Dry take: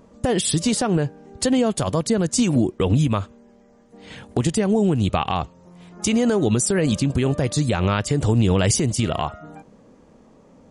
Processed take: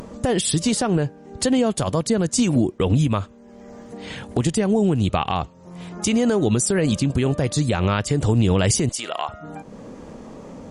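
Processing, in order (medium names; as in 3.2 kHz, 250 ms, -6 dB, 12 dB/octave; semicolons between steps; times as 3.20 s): 8.89–9.29 s: high-pass 630 Hz 12 dB/octave; upward compressor, threshold -26 dBFS; Opus 96 kbps 48 kHz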